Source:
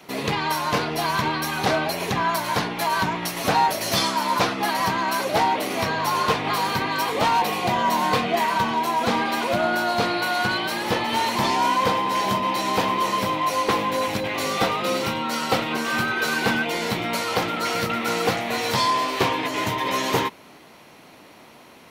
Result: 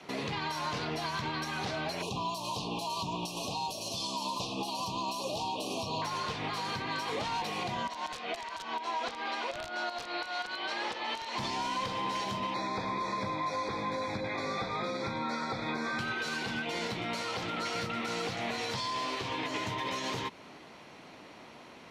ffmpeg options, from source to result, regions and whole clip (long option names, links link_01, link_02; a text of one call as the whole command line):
ffmpeg -i in.wav -filter_complex "[0:a]asettb=1/sr,asplit=3[link_01][link_02][link_03];[link_01]atrim=end=2.024[link_04];[link_02]atrim=start=2.02:end=6.02,asetpts=PTS-STARTPTS,afade=type=in:duration=0.004:curve=qsin,afade=type=out:start_time=3.996:duration=0.004:curve=qsin,asuperstop=centerf=1700:order=20:qfactor=1.3,highshelf=frequency=5300:gain=7[link_05];[link_03]atrim=start=6.016[link_06];[link_04][link_05]acrossfade=duration=0.004:curve1=hsin:curve2=qsin[link_07];[link_07][link_06]acrossfade=duration=0.004:curve1=qsin:curve2=hsin,asettb=1/sr,asplit=3[link_08][link_09][link_10];[link_08]atrim=end=7.874[link_11];[link_09]atrim=start=7.87:end=11.38,asetpts=PTS-STARTPTS,afade=type=in:duration=0.004:curve=qsin,afade=type=out:start_time=3.506:duration=0.004:curve=qsin,highpass=420,lowpass=5700,aeval=exprs='(mod(5.01*val(0)+1,2)-1)/5.01':channel_layout=same[link_12];[link_10]atrim=start=11.376[link_13];[link_11][link_12]acrossfade=duration=0.004:curve1=hsin:curve2=qsin[link_14];[link_14][link_13]acrossfade=duration=0.004:curve1=qsin:curve2=hsin,asettb=1/sr,asplit=3[link_15][link_16][link_17];[link_15]atrim=end=12.544[link_18];[link_16]atrim=start=12.54:end=15.99,asetpts=PTS-STARTPTS,afade=type=in:duration=0.004:curve=qsin,afade=type=out:start_time=3.446:duration=0.004:curve=qsin,acrossover=split=4000[link_19][link_20];[link_20]acompressor=threshold=-41dB:ratio=4:attack=1:release=60[link_21];[link_19][link_21]amix=inputs=2:normalize=0,asuperstop=centerf=2900:order=20:qfactor=3.7,highshelf=frequency=11000:gain=-11.5[link_22];[link_17]atrim=start=15.986[link_23];[link_18][link_22]acrossfade=duration=0.004:curve1=hsin:curve2=qsin[link_24];[link_24][link_23]acrossfade=duration=0.004:curve1=qsin:curve2=hsin,acrossover=split=160|3000[link_25][link_26][link_27];[link_26]acompressor=threshold=-26dB:ratio=6[link_28];[link_25][link_28][link_27]amix=inputs=3:normalize=0,alimiter=limit=-22dB:level=0:latency=1:release=165,lowpass=6500,volume=-3dB" out.wav